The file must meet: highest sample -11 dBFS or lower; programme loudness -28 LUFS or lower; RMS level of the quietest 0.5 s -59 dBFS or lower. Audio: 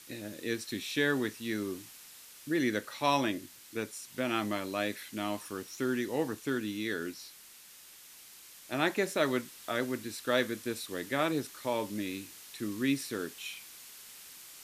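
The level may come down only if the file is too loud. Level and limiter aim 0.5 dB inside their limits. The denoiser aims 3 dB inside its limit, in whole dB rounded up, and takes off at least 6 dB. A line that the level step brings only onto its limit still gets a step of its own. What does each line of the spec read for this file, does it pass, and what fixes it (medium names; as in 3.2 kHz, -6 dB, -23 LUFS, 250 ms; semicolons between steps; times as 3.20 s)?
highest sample -12.0 dBFS: pass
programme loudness -33.5 LUFS: pass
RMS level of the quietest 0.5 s -54 dBFS: fail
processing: noise reduction 8 dB, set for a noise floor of -54 dBFS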